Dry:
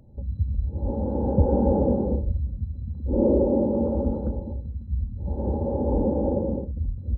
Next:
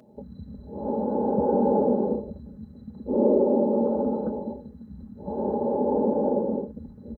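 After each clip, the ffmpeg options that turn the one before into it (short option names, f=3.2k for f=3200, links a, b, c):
-filter_complex "[0:a]highpass=300,aecho=1:1:4.7:0.52,asplit=2[a][b];[b]acompressor=threshold=-33dB:ratio=6,volume=2dB[c];[a][c]amix=inputs=2:normalize=0"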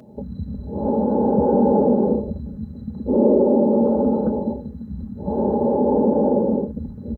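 -filter_complex "[0:a]equalizer=f=88:t=o:w=2.8:g=6.5,asplit=2[a][b];[b]alimiter=limit=-19dB:level=0:latency=1:release=63,volume=0.5dB[c];[a][c]amix=inputs=2:normalize=0"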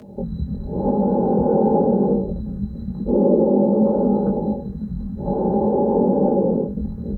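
-filter_complex "[0:a]asplit=2[a][b];[b]acompressor=threshold=-25dB:ratio=6,volume=3dB[c];[a][c]amix=inputs=2:normalize=0,flanger=delay=18.5:depth=4.2:speed=0.96,afreqshift=-17"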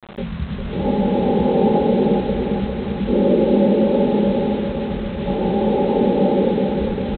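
-af "aresample=8000,acrusher=bits=5:mix=0:aa=0.000001,aresample=44100,aecho=1:1:401|802|1203|1604|2005|2406|2807|3208:0.531|0.303|0.172|0.0983|0.056|0.0319|0.0182|0.0104"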